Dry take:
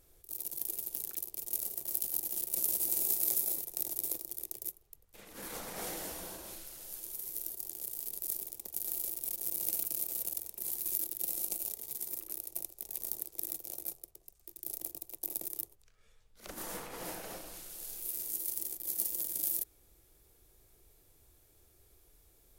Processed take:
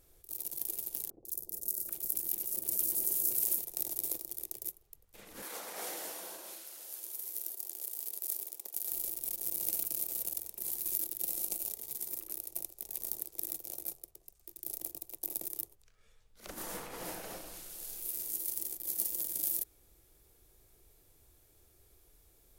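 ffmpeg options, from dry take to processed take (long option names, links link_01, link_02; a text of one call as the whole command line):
ffmpeg -i in.wav -filter_complex "[0:a]asettb=1/sr,asplit=3[link_01][link_02][link_03];[link_01]atrim=end=1.104[link_04];[link_02]atrim=start=1.1:end=3.59,asetpts=PTS-STARTPTS,afade=type=in:duration=0.004:curve=qsin,afade=type=out:start_time=2.486:duration=0.004:curve=qsin,acrossover=split=680|4600[link_05][link_06][link_07];[link_07]adelay=150[link_08];[link_06]adelay=780[link_09];[link_05][link_09][link_08]amix=inputs=3:normalize=0,atrim=end_sample=109809[link_10];[link_03]atrim=start=3.586[link_11];[link_04][link_10]acrossfade=duration=0.004:curve1=hsin:curve2=qsin[link_12];[link_12][link_11]acrossfade=duration=0.004:curve1=qsin:curve2=hsin,asettb=1/sr,asplit=3[link_13][link_14][link_15];[link_13]atrim=end=5.424[link_16];[link_14]atrim=start=5.42:end=8.92,asetpts=PTS-STARTPTS,afade=type=in:duration=0.004:curve=qsin,afade=type=out:start_time=3.496:duration=0.004:curve=qsin,highpass=390[link_17];[link_15]atrim=start=8.916[link_18];[link_16][link_17]acrossfade=duration=0.004:curve1=hsin:curve2=qsin[link_19];[link_19][link_18]acrossfade=duration=0.004:curve1=qsin:curve2=hsin" out.wav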